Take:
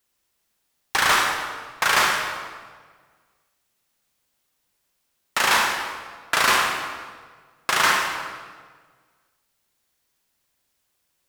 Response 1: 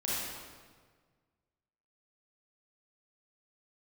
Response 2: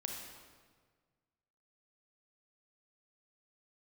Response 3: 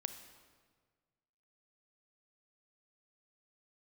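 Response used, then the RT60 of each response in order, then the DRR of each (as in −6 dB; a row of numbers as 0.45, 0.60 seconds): 2; 1.6, 1.6, 1.6 seconds; −8.0, 1.0, 8.5 decibels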